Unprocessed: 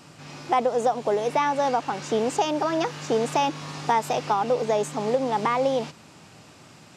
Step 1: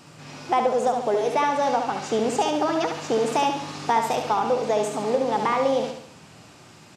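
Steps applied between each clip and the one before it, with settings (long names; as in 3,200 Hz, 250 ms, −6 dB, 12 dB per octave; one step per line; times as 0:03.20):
repeating echo 70 ms, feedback 46%, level −6 dB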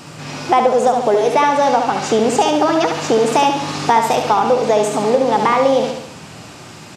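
in parallel at +1 dB: downward compressor, threshold −29 dBFS, peak gain reduction 12 dB
on the sum: floating-point word with a short mantissa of 8 bits
level +5.5 dB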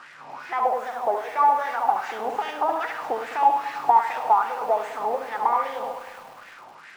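linear delta modulator 64 kbit/s, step −27.5 dBFS
LFO wah 2.5 Hz 780–1,900 Hz, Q 4.3
feedback echo at a low word length 103 ms, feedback 80%, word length 7 bits, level −14.5 dB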